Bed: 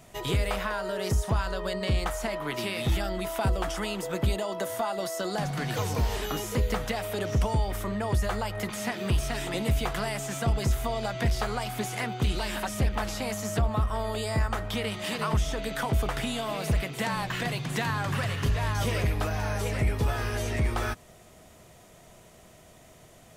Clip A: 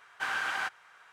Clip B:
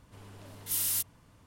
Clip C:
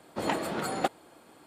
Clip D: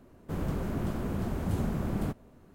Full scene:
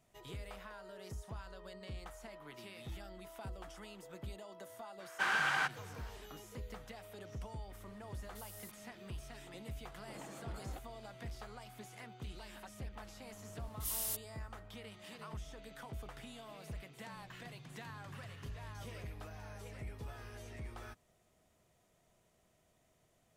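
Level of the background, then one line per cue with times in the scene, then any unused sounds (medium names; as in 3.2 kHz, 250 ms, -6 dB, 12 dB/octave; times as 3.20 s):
bed -20 dB
4.99 s: add A -0.5 dB
7.69 s: add B -11 dB + compression, threshold -40 dBFS
9.92 s: add C -10.5 dB + compression 2.5:1, threshold -42 dBFS
13.14 s: add B -8.5 dB
not used: D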